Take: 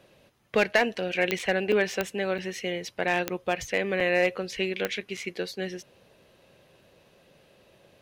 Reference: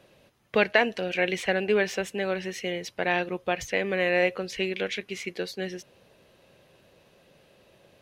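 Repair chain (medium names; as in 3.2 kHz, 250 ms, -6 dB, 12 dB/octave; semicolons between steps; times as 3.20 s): clip repair -13 dBFS; de-click; interpolate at 0.95/1.39/1.72/2.38/4.00/5.17 s, 4.3 ms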